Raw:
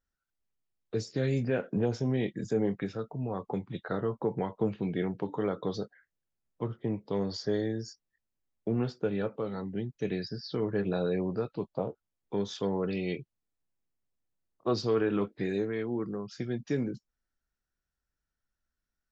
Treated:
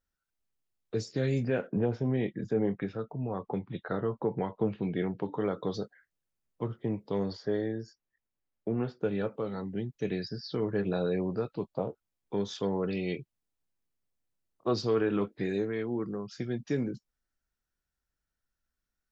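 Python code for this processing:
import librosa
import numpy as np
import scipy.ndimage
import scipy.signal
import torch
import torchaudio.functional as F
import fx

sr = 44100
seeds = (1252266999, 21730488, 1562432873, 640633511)

y = fx.lowpass(x, sr, hz=fx.line((1.67, 2500.0), (5.48, 5400.0)), slope=12, at=(1.67, 5.48), fade=0.02)
y = fx.bass_treble(y, sr, bass_db=-3, treble_db=-15, at=(7.33, 9.01))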